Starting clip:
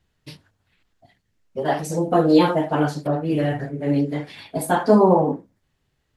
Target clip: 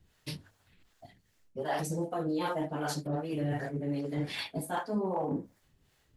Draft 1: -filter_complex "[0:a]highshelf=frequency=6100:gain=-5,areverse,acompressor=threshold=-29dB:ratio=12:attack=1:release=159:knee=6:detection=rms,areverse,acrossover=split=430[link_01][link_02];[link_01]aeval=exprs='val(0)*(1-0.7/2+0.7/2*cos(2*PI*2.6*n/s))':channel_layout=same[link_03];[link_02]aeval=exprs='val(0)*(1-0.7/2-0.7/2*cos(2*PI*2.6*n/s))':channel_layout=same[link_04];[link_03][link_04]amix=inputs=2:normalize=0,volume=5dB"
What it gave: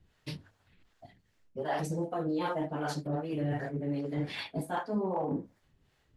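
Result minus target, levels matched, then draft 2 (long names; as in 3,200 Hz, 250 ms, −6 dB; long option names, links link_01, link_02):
8,000 Hz band −6.0 dB
-filter_complex "[0:a]highshelf=frequency=6100:gain=6.5,areverse,acompressor=threshold=-29dB:ratio=12:attack=1:release=159:knee=6:detection=rms,areverse,acrossover=split=430[link_01][link_02];[link_01]aeval=exprs='val(0)*(1-0.7/2+0.7/2*cos(2*PI*2.6*n/s))':channel_layout=same[link_03];[link_02]aeval=exprs='val(0)*(1-0.7/2-0.7/2*cos(2*PI*2.6*n/s))':channel_layout=same[link_04];[link_03][link_04]amix=inputs=2:normalize=0,volume=5dB"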